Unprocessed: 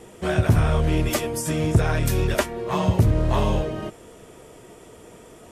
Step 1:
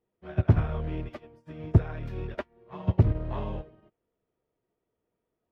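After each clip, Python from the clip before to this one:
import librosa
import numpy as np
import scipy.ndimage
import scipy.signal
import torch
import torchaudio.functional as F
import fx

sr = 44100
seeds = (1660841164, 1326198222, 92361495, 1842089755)

y = fx.air_absorb(x, sr, metres=330.0)
y = fx.upward_expand(y, sr, threshold_db=-36.0, expansion=2.5)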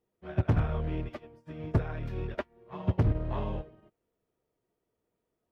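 y = np.clip(x, -10.0 ** (-19.5 / 20.0), 10.0 ** (-19.5 / 20.0))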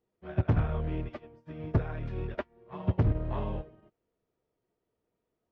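y = fx.air_absorb(x, sr, metres=110.0)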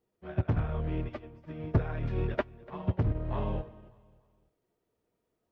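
y = fx.rider(x, sr, range_db=5, speed_s=0.5)
y = fx.echo_feedback(y, sr, ms=292, feedback_pct=40, wet_db=-22.0)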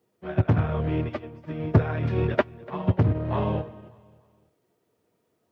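y = scipy.signal.sosfilt(scipy.signal.butter(4, 86.0, 'highpass', fs=sr, output='sos'), x)
y = y * 10.0 ** (8.5 / 20.0)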